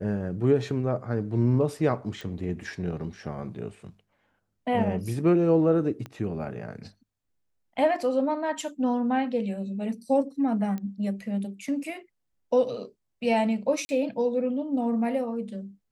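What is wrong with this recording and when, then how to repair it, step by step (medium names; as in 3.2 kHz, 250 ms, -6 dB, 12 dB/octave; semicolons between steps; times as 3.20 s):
2.21 s: pop
6.06 s: pop -24 dBFS
10.78 s: pop -23 dBFS
13.85–13.89 s: dropout 40 ms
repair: de-click; interpolate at 13.85 s, 40 ms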